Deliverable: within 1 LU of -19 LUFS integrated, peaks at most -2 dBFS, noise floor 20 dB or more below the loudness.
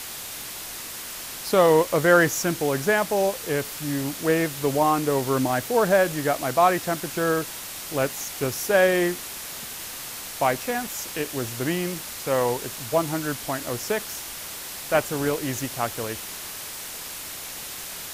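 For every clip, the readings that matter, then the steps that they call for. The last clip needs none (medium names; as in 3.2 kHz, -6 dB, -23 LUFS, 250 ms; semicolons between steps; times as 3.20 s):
noise floor -36 dBFS; noise floor target -45 dBFS; loudness -25.0 LUFS; peak level -6.0 dBFS; loudness target -19.0 LUFS
-> noise reduction 9 dB, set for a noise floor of -36 dBFS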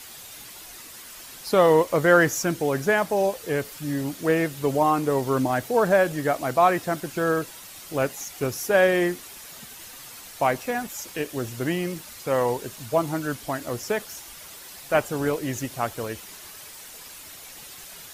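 noise floor -43 dBFS; noise floor target -44 dBFS
-> noise reduction 6 dB, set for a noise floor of -43 dBFS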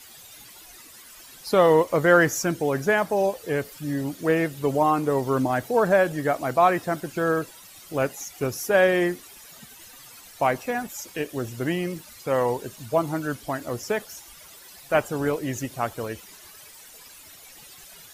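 noise floor -47 dBFS; loudness -24.0 LUFS; peak level -6.0 dBFS; loudness target -19.0 LUFS
-> trim +5 dB; peak limiter -2 dBFS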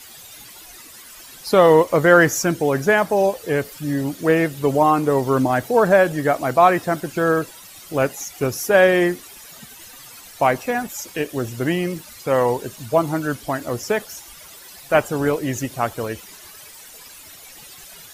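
loudness -19.0 LUFS; peak level -2.0 dBFS; noise floor -42 dBFS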